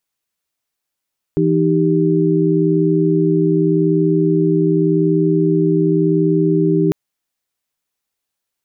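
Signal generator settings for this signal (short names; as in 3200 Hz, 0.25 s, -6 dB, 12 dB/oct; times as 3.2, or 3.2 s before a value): chord E3/D#4/G4 sine, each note -16 dBFS 5.55 s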